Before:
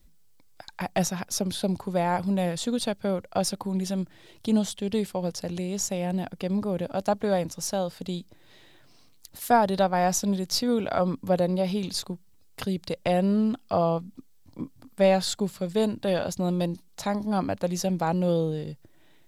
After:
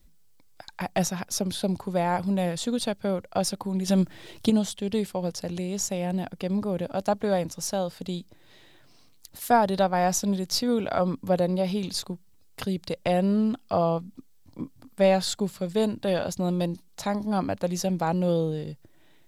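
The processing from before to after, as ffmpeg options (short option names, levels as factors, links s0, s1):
-filter_complex "[0:a]asettb=1/sr,asplit=3[s0][s1][s2];[s0]atrim=end=3.884[s3];[s1]atrim=start=3.88:end=4.5,asetpts=PTS-STARTPTS,afade=t=in:d=0.004:c=qsin,afade=t=out:st=0.616:d=0.004:c=qsin,acontrast=88[s4];[s2]atrim=start=4.496[s5];[s3][s4]acrossfade=d=0.004:c1=hsin:c2=qsin[s6];[s6][s5]acrossfade=d=0.004:c1=qsin:c2=hsin"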